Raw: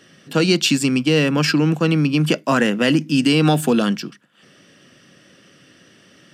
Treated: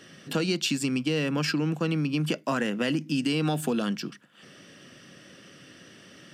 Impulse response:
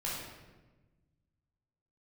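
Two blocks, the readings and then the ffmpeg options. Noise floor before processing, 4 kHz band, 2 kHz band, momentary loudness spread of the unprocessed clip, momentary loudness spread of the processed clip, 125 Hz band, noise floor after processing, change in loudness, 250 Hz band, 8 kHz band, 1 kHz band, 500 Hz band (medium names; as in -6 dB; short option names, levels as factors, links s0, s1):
-52 dBFS, -10.0 dB, -10.0 dB, 4 LU, 3 LU, -10.0 dB, -52 dBFS, -10.0 dB, -10.0 dB, -9.0 dB, -10.0 dB, -10.5 dB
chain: -af "acompressor=threshold=0.0355:ratio=2.5"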